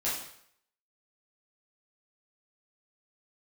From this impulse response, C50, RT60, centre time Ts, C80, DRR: 3.0 dB, 0.65 s, 49 ms, 6.5 dB, -9.0 dB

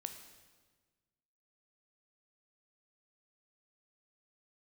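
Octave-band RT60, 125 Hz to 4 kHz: 1.9, 1.7, 1.5, 1.3, 1.3, 1.2 s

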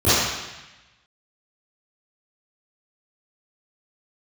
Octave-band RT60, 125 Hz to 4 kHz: 1.2, 1.0, 0.95, 1.1, 1.2, 1.1 s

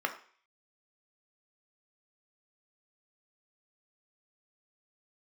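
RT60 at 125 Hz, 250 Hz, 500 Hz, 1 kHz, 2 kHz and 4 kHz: 0.30, 0.40, 0.40, 0.50, 0.55, 0.55 s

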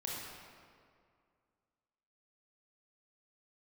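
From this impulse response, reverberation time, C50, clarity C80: 2.2 s, -2.0 dB, 0.5 dB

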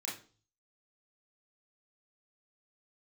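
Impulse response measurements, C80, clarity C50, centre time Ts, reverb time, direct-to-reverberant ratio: 13.5 dB, 7.0 dB, 34 ms, 0.40 s, -6.0 dB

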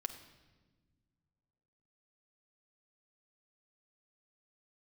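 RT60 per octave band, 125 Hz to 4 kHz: 2.6, 2.4, 1.5, 1.1, 1.1, 1.1 s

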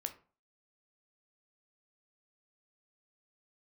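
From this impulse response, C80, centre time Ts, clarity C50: 19.0 dB, 7 ms, 14.0 dB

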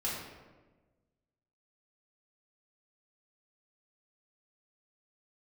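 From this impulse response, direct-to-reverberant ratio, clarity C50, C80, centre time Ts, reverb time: -7.0 dB, 1.0 dB, 3.5 dB, 70 ms, 1.3 s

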